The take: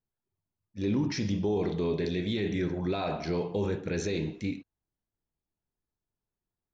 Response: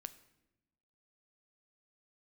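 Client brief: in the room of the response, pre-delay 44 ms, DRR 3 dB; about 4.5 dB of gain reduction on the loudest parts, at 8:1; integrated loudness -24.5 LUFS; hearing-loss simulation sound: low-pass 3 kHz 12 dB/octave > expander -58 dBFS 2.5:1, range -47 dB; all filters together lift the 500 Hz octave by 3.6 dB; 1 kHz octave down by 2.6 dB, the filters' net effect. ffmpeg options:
-filter_complex "[0:a]equalizer=f=500:t=o:g=6,equalizer=f=1000:t=o:g=-7.5,acompressor=threshold=0.0447:ratio=8,asplit=2[s0][s1];[1:a]atrim=start_sample=2205,adelay=44[s2];[s1][s2]afir=irnorm=-1:irlink=0,volume=1.19[s3];[s0][s3]amix=inputs=2:normalize=0,lowpass=3000,agate=range=0.00447:threshold=0.00126:ratio=2.5,volume=2.11"

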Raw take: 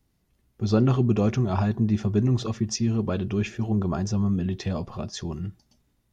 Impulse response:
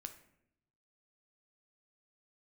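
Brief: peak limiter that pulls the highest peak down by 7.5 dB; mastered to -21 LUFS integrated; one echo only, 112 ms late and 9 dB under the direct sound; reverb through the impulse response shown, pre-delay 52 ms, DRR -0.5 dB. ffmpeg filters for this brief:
-filter_complex "[0:a]alimiter=limit=0.133:level=0:latency=1,aecho=1:1:112:0.355,asplit=2[s0][s1];[1:a]atrim=start_sample=2205,adelay=52[s2];[s1][s2]afir=irnorm=-1:irlink=0,volume=1.78[s3];[s0][s3]amix=inputs=2:normalize=0,volume=1.33"

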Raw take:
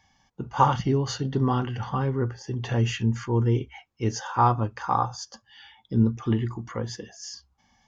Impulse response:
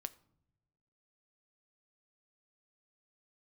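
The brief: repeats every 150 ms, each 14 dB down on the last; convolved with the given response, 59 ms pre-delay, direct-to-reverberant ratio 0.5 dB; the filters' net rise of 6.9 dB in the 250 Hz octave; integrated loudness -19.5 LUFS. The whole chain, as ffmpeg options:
-filter_complex "[0:a]equalizer=f=250:t=o:g=8,aecho=1:1:150|300:0.2|0.0399,asplit=2[s0][s1];[1:a]atrim=start_sample=2205,adelay=59[s2];[s1][s2]afir=irnorm=-1:irlink=0,volume=1.41[s3];[s0][s3]amix=inputs=2:normalize=0"

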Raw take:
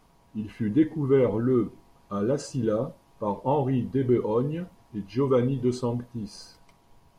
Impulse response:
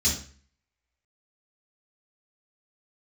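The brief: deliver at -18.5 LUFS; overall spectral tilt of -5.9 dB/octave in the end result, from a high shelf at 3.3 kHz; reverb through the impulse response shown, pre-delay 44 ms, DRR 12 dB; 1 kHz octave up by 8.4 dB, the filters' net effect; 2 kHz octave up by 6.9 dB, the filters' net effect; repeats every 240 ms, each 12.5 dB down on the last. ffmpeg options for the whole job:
-filter_complex "[0:a]equalizer=f=1000:t=o:g=8.5,equalizer=f=2000:t=o:g=3.5,highshelf=f=3300:g=7.5,aecho=1:1:240|480|720:0.237|0.0569|0.0137,asplit=2[s0][s1];[1:a]atrim=start_sample=2205,adelay=44[s2];[s1][s2]afir=irnorm=-1:irlink=0,volume=0.0841[s3];[s0][s3]amix=inputs=2:normalize=0,volume=1.88"

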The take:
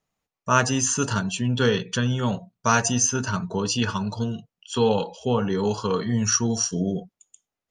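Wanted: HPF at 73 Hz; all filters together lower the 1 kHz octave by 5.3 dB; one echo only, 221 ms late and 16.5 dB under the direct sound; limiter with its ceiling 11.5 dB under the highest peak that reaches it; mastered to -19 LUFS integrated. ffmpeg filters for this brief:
-af "highpass=73,equalizer=f=1000:t=o:g=-7,alimiter=limit=0.126:level=0:latency=1,aecho=1:1:221:0.15,volume=2.82"

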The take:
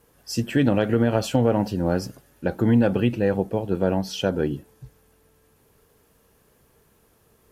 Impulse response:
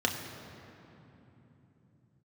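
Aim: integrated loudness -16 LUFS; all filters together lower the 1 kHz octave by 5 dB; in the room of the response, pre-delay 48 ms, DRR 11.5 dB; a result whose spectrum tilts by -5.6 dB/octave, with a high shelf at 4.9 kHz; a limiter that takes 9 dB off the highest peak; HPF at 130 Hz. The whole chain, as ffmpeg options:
-filter_complex "[0:a]highpass=130,equalizer=f=1000:t=o:g=-7.5,highshelf=f=4900:g=3.5,alimiter=limit=0.141:level=0:latency=1,asplit=2[s0][s1];[1:a]atrim=start_sample=2205,adelay=48[s2];[s1][s2]afir=irnorm=-1:irlink=0,volume=0.0891[s3];[s0][s3]amix=inputs=2:normalize=0,volume=3.76"

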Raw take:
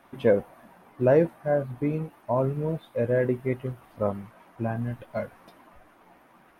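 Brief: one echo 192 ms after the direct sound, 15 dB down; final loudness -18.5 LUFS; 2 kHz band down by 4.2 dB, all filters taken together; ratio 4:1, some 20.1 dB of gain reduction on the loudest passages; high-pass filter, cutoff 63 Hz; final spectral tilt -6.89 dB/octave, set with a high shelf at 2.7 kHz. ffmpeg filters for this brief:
-af "highpass=63,equalizer=f=2000:t=o:g=-4.5,highshelf=f=2700:g=-3,acompressor=threshold=0.00891:ratio=4,aecho=1:1:192:0.178,volume=18.8"

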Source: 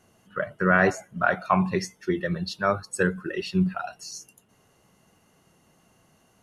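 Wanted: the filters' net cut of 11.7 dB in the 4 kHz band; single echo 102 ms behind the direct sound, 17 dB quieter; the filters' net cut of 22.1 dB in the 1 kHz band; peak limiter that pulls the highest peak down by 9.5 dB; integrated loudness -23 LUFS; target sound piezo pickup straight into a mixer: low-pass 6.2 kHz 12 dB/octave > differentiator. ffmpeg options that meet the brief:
-af "equalizer=f=1000:t=o:g=-8.5,equalizer=f=4000:t=o:g=-8,alimiter=limit=0.119:level=0:latency=1,lowpass=6200,aderivative,aecho=1:1:102:0.141,volume=18.8"

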